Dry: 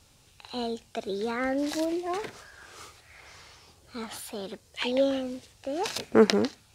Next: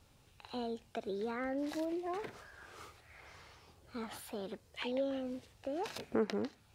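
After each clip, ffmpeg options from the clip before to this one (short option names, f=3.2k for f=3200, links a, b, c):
-af "acompressor=threshold=-34dB:ratio=2,equalizer=f=6.9k:t=o:w=2.2:g=-8.5,volume=-3.5dB"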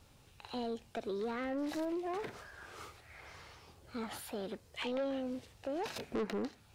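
-af "asoftclip=type=tanh:threshold=-34dB,volume=3dB"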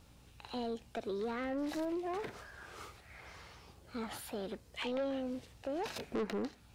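-af "aeval=exprs='val(0)+0.000708*(sin(2*PI*60*n/s)+sin(2*PI*2*60*n/s)/2+sin(2*PI*3*60*n/s)/3+sin(2*PI*4*60*n/s)/4+sin(2*PI*5*60*n/s)/5)':c=same"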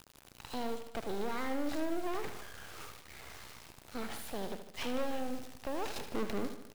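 -af "acrusher=bits=6:dc=4:mix=0:aa=0.000001,aecho=1:1:76|152|228|304|380|456:0.316|0.174|0.0957|0.0526|0.0289|0.0159,volume=4.5dB"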